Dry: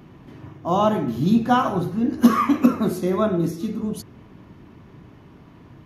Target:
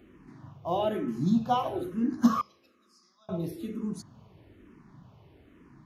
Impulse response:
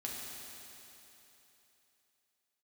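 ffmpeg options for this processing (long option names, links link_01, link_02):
-filter_complex "[0:a]asettb=1/sr,asplit=3[link_01][link_02][link_03];[link_01]atrim=end=2.414[link_04];[link_02]atrim=start=2.41:end=3.29,asetpts=PTS-STARTPTS,afade=type=in:duration=0.004:curve=qsin,afade=type=out:start_time=0.876:duration=0.004:curve=qsin,bandpass=frequency=5000:width_type=q:width=10:csg=0[link_05];[link_03]atrim=start=3.286[link_06];[link_04][link_05]acrossfade=duration=0.004:curve1=hsin:curve2=qsin[link_07];[link_07][link_06]acrossfade=duration=0.004:curve1=qsin:curve2=hsin,asplit=2[link_08][link_09];[1:a]atrim=start_sample=2205,asetrate=66150,aresample=44100,lowpass=7900[link_10];[link_09][link_10]afir=irnorm=-1:irlink=0,volume=-21.5dB[link_11];[link_08][link_11]amix=inputs=2:normalize=0,asplit=2[link_12][link_13];[link_13]afreqshift=-1.1[link_14];[link_12][link_14]amix=inputs=2:normalize=1,volume=-6dB"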